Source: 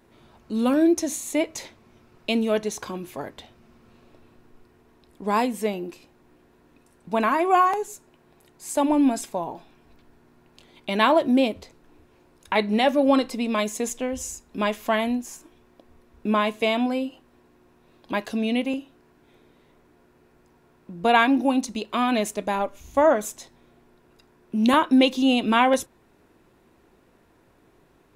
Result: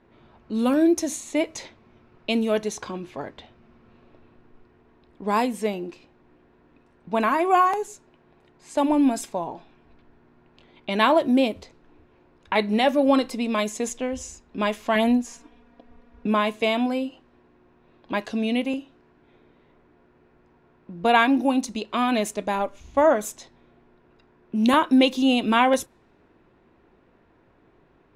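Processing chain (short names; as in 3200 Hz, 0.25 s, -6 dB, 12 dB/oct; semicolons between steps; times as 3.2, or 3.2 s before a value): low-pass opened by the level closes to 2900 Hz, open at -20 dBFS; 14.95–16.27 comb 4.2 ms, depth 90%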